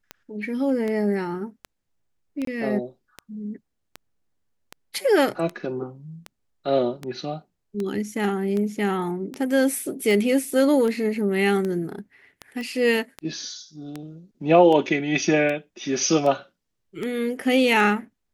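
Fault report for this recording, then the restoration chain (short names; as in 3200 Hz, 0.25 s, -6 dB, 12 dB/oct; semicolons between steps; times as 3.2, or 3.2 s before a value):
tick 78 rpm -17 dBFS
2.45–2.47 gap 23 ms
12.61 pop -22 dBFS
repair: de-click; interpolate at 2.45, 23 ms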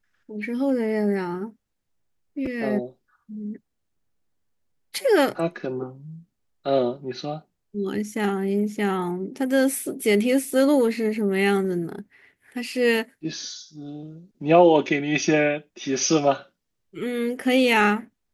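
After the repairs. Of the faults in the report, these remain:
none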